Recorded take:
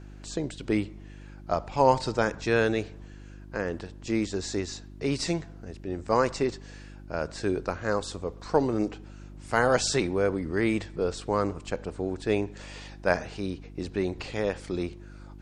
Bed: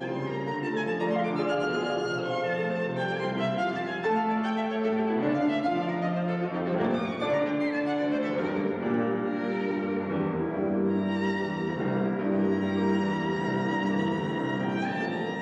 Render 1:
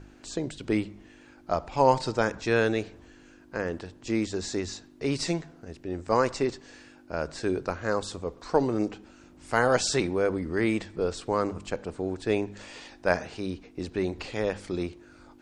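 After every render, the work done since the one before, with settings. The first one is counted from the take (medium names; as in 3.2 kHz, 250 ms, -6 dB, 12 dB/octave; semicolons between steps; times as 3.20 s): de-hum 50 Hz, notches 4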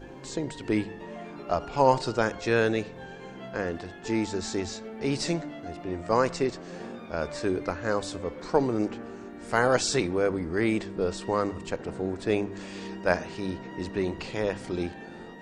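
add bed -13.5 dB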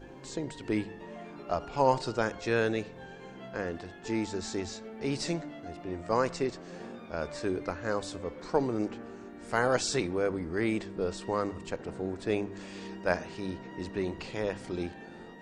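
trim -4 dB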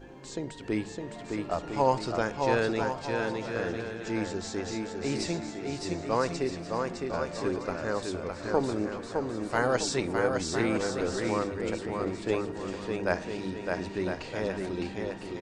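bouncing-ball echo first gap 610 ms, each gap 0.65×, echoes 5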